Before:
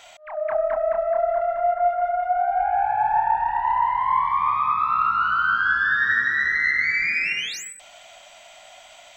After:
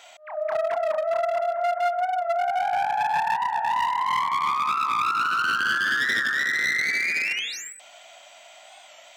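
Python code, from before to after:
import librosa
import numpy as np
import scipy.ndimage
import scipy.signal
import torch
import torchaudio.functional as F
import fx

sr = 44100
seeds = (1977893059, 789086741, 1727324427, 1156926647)

y = np.minimum(x, 2.0 * 10.0 ** (-19.0 / 20.0) - x)
y = scipy.signal.sosfilt(scipy.signal.butter(2, 260.0, 'highpass', fs=sr, output='sos'), y)
y = fx.record_warp(y, sr, rpm=45.0, depth_cents=100.0)
y = F.gain(torch.from_numpy(y), -1.5).numpy()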